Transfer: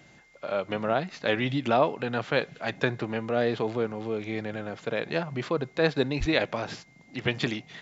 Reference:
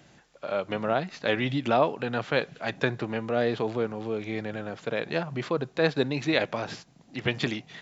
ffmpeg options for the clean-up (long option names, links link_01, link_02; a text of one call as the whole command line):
ffmpeg -i in.wav -filter_complex "[0:a]bandreject=frequency=2100:width=30,asplit=3[link_01][link_02][link_03];[link_01]afade=type=out:start_time=6.19:duration=0.02[link_04];[link_02]highpass=frequency=140:width=0.5412,highpass=frequency=140:width=1.3066,afade=type=in:start_time=6.19:duration=0.02,afade=type=out:start_time=6.31:duration=0.02[link_05];[link_03]afade=type=in:start_time=6.31:duration=0.02[link_06];[link_04][link_05][link_06]amix=inputs=3:normalize=0" out.wav